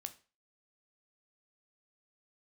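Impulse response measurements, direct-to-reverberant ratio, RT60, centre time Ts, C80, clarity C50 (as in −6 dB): 8.0 dB, 0.35 s, 5 ms, 22.0 dB, 16.5 dB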